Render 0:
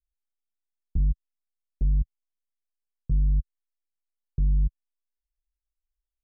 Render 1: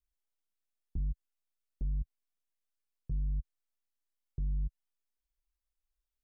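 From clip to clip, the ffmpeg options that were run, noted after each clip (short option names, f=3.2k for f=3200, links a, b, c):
-af "alimiter=level_in=4.5dB:limit=-24dB:level=0:latency=1:release=68,volume=-4.5dB,volume=-1dB"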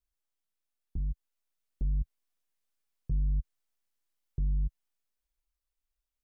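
-af "dynaudnorm=f=260:g=11:m=4.5dB"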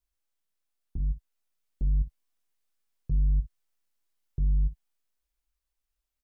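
-af "aecho=1:1:21|59:0.316|0.2,volume=1.5dB"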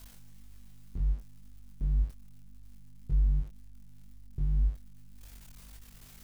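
-af "aeval=exprs='val(0)+0.5*0.0075*sgn(val(0))':c=same,aeval=exprs='val(0)+0.00316*(sin(2*PI*50*n/s)+sin(2*PI*2*50*n/s)/2+sin(2*PI*3*50*n/s)/3+sin(2*PI*4*50*n/s)/4+sin(2*PI*5*50*n/s)/5)':c=same,flanger=delay=22.5:depth=4.8:speed=1.9"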